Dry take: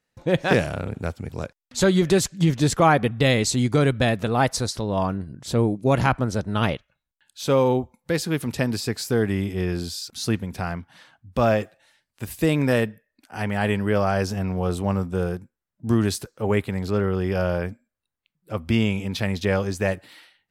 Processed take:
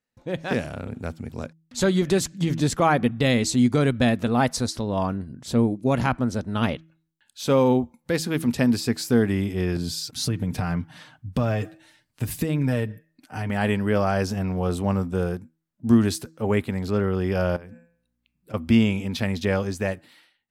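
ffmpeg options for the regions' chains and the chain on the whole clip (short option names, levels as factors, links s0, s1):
-filter_complex "[0:a]asettb=1/sr,asplit=3[s0][s1][s2];[s0]atrim=end=9.764[s3];[s1]atrim=start=9.76:end=13.5,asetpts=PTS-STARTPTS,afade=t=in:d=0.004:c=qsin,afade=t=out:st=3.736:d=0.004:c=qsin,equalizer=f=100:t=o:w=1.7:g=9,aecho=1:1:6.6:0.5,atrim=end_sample=164934,acompressor=threshold=0.0631:ratio=5:attack=3.2:release=140:knee=1:detection=peak[s4];[s2]atrim=start=13.496[s5];[s3][s4]acrossfade=d=0.004:c1=hsin:c2=qsin[s6];[s6][s5]acrossfade=d=0.004:c1=qsin:c2=hsin,asettb=1/sr,asplit=3[s7][s8][s9];[s7]atrim=end=17.564[s10];[s8]atrim=start=17.56:end=18.54,asetpts=PTS-STARTPTS,afade=t=in:d=0.004:c=qsin,afade=t=out:st=0.976:d=0.004:c=qsin,bandreject=f=169.9:t=h:w=4,bandreject=f=339.8:t=h:w=4,bandreject=f=509.7:t=h:w=4,bandreject=f=679.6:t=h:w=4,bandreject=f=849.5:t=h:w=4,bandreject=f=1019.4:t=h:w=4,bandreject=f=1189.3:t=h:w=4,bandreject=f=1359.2:t=h:w=4,bandreject=f=1529.1:t=h:w=4,bandreject=f=1699:t=h:w=4,bandreject=f=1868.9:t=h:w=4,bandreject=f=2038.8:t=h:w=4,bandreject=f=2208.7:t=h:w=4,bandreject=f=2378.6:t=h:w=4,bandreject=f=2548.5:t=h:w=4,bandreject=f=2718.4:t=h:w=4,acompressor=threshold=0.0141:ratio=16:attack=3.2:release=140:knee=1:detection=peak,aeval=exprs='val(0)+0.000141*(sin(2*PI*60*n/s)+sin(2*PI*2*60*n/s)/2+sin(2*PI*3*60*n/s)/3+sin(2*PI*4*60*n/s)/4+sin(2*PI*5*60*n/s)/5)':c=same[s11];[s9]atrim=start=18.536[s12];[s10][s11]acrossfade=d=0.004:c1=hsin:c2=qsin[s13];[s13][s12]acrossfade=d=0.004:c1=qsin:c2=hsin,dynaudnorm=f=110:g=13:m=3.76,equalizer=f=240:w=6.7:g=9,bandreject=f=161.2:t=h:w=4,bandreject=f=322.4:t=h:w=4,volume=0.376"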